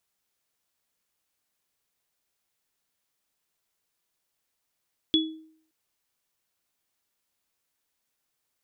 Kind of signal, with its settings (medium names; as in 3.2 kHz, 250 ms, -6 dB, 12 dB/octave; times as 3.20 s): sine partials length 0.57 s, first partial 317 Hz, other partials 3.39 kHz, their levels 2 dB, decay 0.59 s, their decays 0.27 s, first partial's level -19 dB